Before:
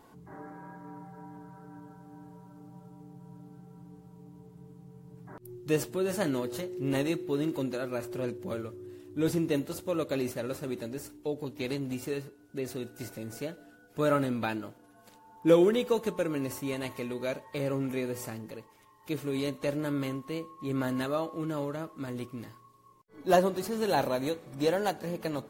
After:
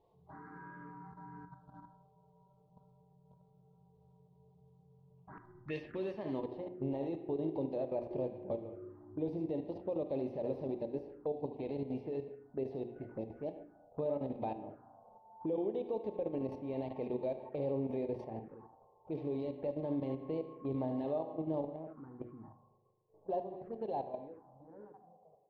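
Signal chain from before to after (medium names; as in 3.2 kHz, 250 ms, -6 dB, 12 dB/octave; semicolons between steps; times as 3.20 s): fade out at the end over 5.00 s; treble shelf 2.2 kHz +7.5 dB; compression 8:1, threshold -32 dBFS, peak gain reduction 16 dB; tone controls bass -2 dB, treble +14 dB; thinning echo 74 ms, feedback 38%, high-pass 600 Hz, level -6.5 dB; level held to a coarse grid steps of 12 dB; spring tank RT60 1.8 s, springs 38 ms, chirp 25 ms, DRR 11 dB; low-pass sweep 3.7 kHz -> 790 Hz, 4.99–6.70 s; touch-sensitive phaser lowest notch 230 Hz, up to 1.4 kHz, full sweep at -38.5 dBFS; hum notches 60/120/180/240/300/360 Hz; level-controlled noise filter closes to 400 Hz, open at -34 dBFS; tape noise reduction on one side only encoder only; trim +1.5 dB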